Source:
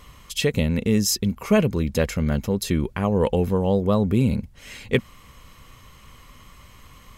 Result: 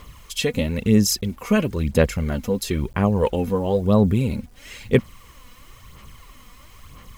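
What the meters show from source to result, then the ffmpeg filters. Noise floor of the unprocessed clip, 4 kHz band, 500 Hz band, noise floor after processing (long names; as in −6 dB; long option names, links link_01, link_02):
−49 dBFS, +0.5 dB, +1.0 dB, −47 dBFS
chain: -af "acrusher=bits=8:mix=0:aa=0.000001,aphaser=in_gain=1:out_gain=1:delay=4.1:decay=0.5:speed=1:type=sinusoidal,volume=-1dB"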